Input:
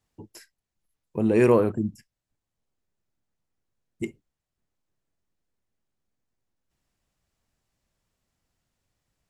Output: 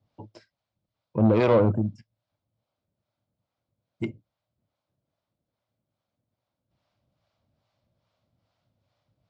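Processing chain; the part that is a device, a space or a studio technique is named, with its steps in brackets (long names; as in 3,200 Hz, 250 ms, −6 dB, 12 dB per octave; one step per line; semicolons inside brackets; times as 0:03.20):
guitar amplifier with harmonic tremolo (two-band tremolo in antiphase 2.4 Hz, depth 70%, crossover 510 Hz; soft clipping −23 dBFS, distortion −11 dB; loudspeaker in its box 85–4,400 Hz, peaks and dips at 110 Hz +9 dB, 400 Hz −7 dB, 600 Hz +8 dB, 1,800 Hz −9 dB, 2,700 Hz −5 dB)
level +8 dB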